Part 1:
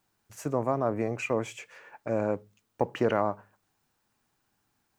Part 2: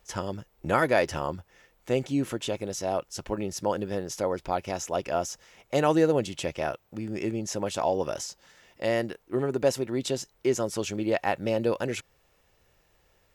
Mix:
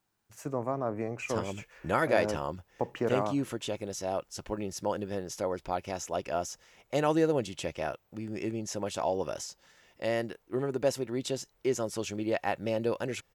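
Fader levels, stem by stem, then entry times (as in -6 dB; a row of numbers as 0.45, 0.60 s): -4.5, -4.0 dB; 0.00, 1.20 s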